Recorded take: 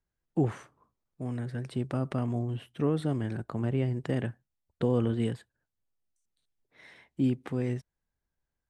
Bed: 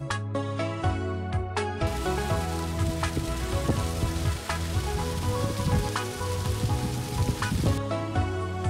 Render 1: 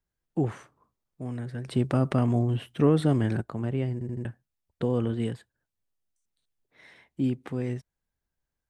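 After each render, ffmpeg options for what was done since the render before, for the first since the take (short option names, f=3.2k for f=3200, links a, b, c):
-filter_complex "[0:a]asettb=1/sr,asplit=3[a][b][c];[a]atrim=end=1.684[d];[b]atrim=start=1.68:end=3.41,asetpts=PTS-STARTPTS,afade=t=in:d=0.004:c=qsin,afade=t=out:st=1.726:d=0.004:c=qsin,acontrast=73[e];[c]atrim=start=3.406[f];[d][e]acrossfade=d=0.004:c1=hsin:c2=qsin[g];[g][f]acrossfade=d=0.004:c1=qsin:c2=hsin,asplit=5[h][i][j][k][l];[h]atrim=end=4.012[m];[i]atrim=start=3.928:end=4.012[n];[j]atrim=start=3.928:end=4.012[o];[k]atrim=start=3.928:end=4.012[p];[l]atrim=start=4.248[q];[m][n]acrossfade=d=0.004:c1=hsin:c2=hsin[r];[r][o]acrossfade=d=0.004:c1=hsin:c2=hsin[s];[s][p]acrossfade=d=0.004:c1=hsin:c2=hsin[t];[t][q]acrossfade=d=0.004:c1=hsin:c2=hsin"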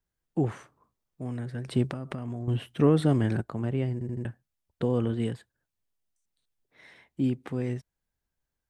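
-filter_complex "[0:a]asettb=1/sr,asplit=3[a][b][c];[a]atrim=end=1.874[d];[b]atrim=start=1.87:end=2.48,asetpts=PTS-STARTPTS,afade=t=in:d=0.004:c=qsin,afade=t=out:st=0.606:d=0.004:c=qsin,acompressor=threshold=-30dB:ratio=12:attack=3.2:release=140:knee=1:detection=peak[e];[c]atrim=start=2.476[f];[d][e]acrossfade=d=0.004:c1=hsin:c2=qsin[g];[g][f]acrossfade=d=0.004:c1=qsin:c2=hsin"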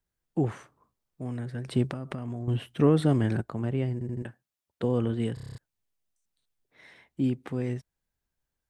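-filter_complex "[0:a]asettb=1/sr,asplit=3[a][b][c];[a]atrim=end=4.224[d];[b]atrim=start=4.22:end=4.84,asetpts=PTS-STARTPTS,afade=t=in:d=0.004:c=qsin,afade=t=out:st=0.616:d=0.004:c=qsin,highpass=f=280:p=1[e];[c]atrim=start=4.836[f];[d][e]acrossfade=d=0.004:c1=hsin:c2=qsin[g];[g][f]acrossfade=d=0.004:c1=qsin:c2=hsin,asplit=9[h][i][j][k][l][m][n][o][p];[h]atrim=end=5.372[q];[i]atrim=start=5.338:end=5.372[r];[j]atrim=start=5.338:end=5.372[s];[k]atrim=start=5.338:end=5.372[t];[l]atrim=start=5.338:end=5.372[u];[m]atrim=start=5.338:end=5.372[v];[n]atrim=start=5.338:end=5.372[w];[o]atrim=start=5.338:end=5.372[x];[p]atrim=start=5.578[y];[q][r]acrossfade=d=0.004:c1=hsin:c2=hsin[z];[z][s]acrossfade=d=0.004:c1=hsin:c2=hsin[aa];[aa][t]acrossfade=d=0.004:c1=hsin:c2=hsin[ab];[ab][u]acrossfade=d=0.004:c1=hsin:c2=hsin[ac];[ac][v]acrossfade=d=0.004:c1=hsin:c2=hsin[ad];[ad][w]acrossfade=d=0.004:c1=hsin:c2=hsin[ae];[ae][x]acrossfade=d=0.004:c1=hsin:c2=hsin[af];[af][y]acrossfade=d=0.004:c1=hsin:c2=hsin"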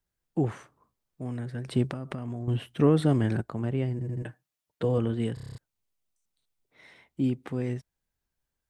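-filter_complex "[0:a]asettb=1/sr,asplit=3[a][b][c];[a]atrim=end=3.984[d];[b]atrim=start=3.98:end=4.98,asetpts=PTS-STARTPTS,afade=t=in:d=0.004:c=qsin,afade=t=out:st=0.996:d=0.004:c=qsin,aecho=1:1:6.5:0.59,atrim=end_sample=44100[e];[c]atrim=start=4.976[f];[d][e]acrossfade=d=0.004:c1=hsin:c2=qsin[g];[g][f]acrossfade=d=0.004:c1=qsin:c2=hsin,asettb=1/sr,asplit=3[h][i][j];[h]atrim=end=5.514[k];[i]atrim=start=5.51:end=7.42,asetpts=PTS-STARTPTS,afade=t=in:d=0.004:c=qsin,afade=t=out:st=1.906:d=0.004:c=qsin,bandreject=f=1.7k:w=10[l];[j]atrim=start=7.416[m];[k][l]acrossfade=d=0.004:c1=hsin:c2=qsin[n];[n][m]acrossfade=d=0.004:c1=qsin:c2=hsin"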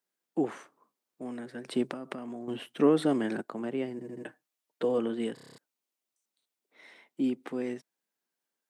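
-af "highpass=f=230:w=0.5412,highpass=f=230:w=1.3066"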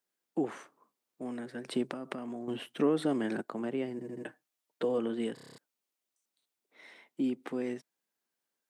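-af "acompressor=threshold=-31dB:ratio=1.5"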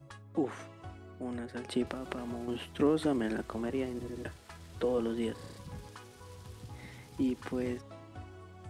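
-filter_complex "[1:a]volume=-20.5dB[a];[0:a][a]amix=inputs=2:normalize=0"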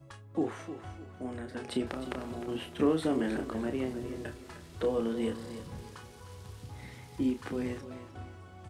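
-filter_complex "[0:a]asplit=2[a][b];[b]adelay=31,volume=-7dB[c];[a][c]amix=inputs=2:normalize=0,aecho=1:1:306|612|918:0.251|0.0804|0.0257"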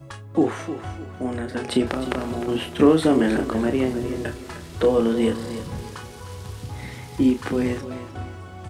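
-af "volume=11.5dB"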